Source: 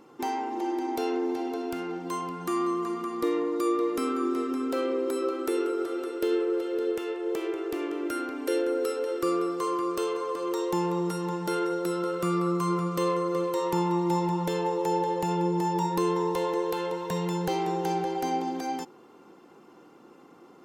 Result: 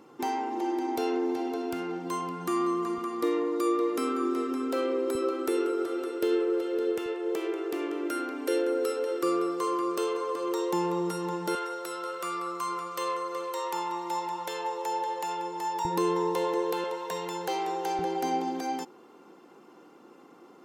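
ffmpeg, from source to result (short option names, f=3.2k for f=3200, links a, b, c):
-af "asetnsamples=n=441:p=0,asendcmd='2.98 highpass f 210;5.15 highpass f 79;7.06 highpass f 210;11.55 highpass f 700;15.85 highpass f 210;16.84 highpass f 450;17.99 highpass f 180',highpass=63"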